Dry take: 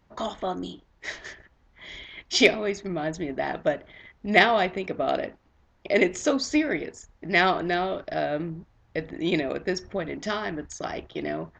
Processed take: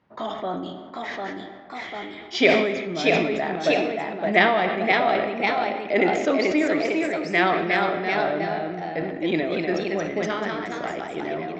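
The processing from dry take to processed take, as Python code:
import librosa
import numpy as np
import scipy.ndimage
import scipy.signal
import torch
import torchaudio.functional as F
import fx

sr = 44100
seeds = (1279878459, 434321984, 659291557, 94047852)

y = fx.bandpass_edges(x, sr, low_hz=140.0, high_hz=3400.0)
y = fx.echo_pitch(y, sr, ms=772, semitones=1, count=2, db_per_echo=-3.0)
y = fx.rev_freeverb(y, sr, rt60_s=2.2, hf_ratio=0.6, predelay_ms=15, drr_db=9.5)
y = fx.sustainer(y, sr, db_per_s=45.0)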